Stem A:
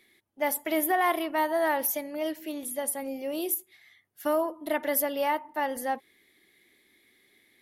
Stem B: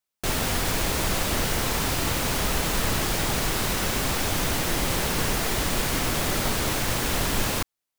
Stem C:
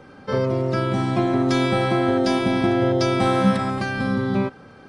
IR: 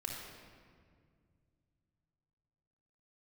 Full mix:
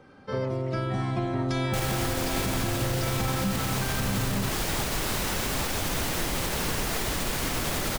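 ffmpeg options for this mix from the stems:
-filter_complex "[0:a]lowpass=frequency=5900:width=0.5412,lowpass=frequency=5900:width=1.3066,volume=-18dB[link_01];[1:a]adelay=1500,volume=-2.5dB[link_02];[2:a]asubboost=boost=7.5:cutoff=120,volume=-7.5dB[link_03];[link_01][link_02][link_03]amix=inputs=3:normalize=0,alimiter=limit=-18dB:level=0:latency=1:release=51"

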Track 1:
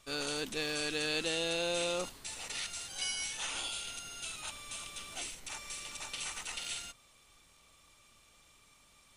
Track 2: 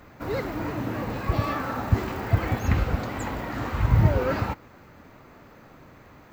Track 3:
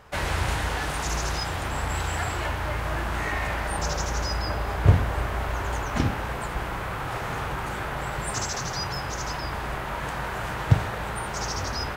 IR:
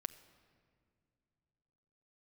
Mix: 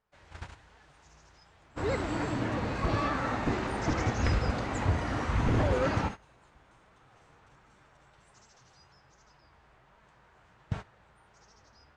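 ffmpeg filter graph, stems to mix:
-filter_complex "[0:a]acompressor=threshold=-38dB:ratio=6,adelay=2000,volume=-12dB[link_01];[1:a]aeval=exprs='0.126*(abs(mod(val(0)/0.126+3,4)-2)-1)':channel_layout=same,adelay=1550,volume=-3.5dB,asplit=2[link_02][link_03];[link_03]volume=-14dB[link_04];[2:a]flanger=delay=4.4:depth=9:regen=47:speed=1.3:shape=sinusoidal,volume=-11.5dB,asplit=2[link_05][link_06];[link_06]volume=-4dB[link_07];[3:a]atrim=start_sample=2205[link_08];[link_04][link_07]amix=inputs=2:normalize=0[link_09];[link_09][link_08]afir=irnorm=-1:irlink=0[link_10];[link_01][link_02][link_05][link_10]amix=inputs=4:normalize=0,agate=range=-18dB:threshold=-35dB:ratio=16:detection=peak,lowpass=frequency=7900:width=0.5412,lowpass=frequency=7900:width=1.3066"

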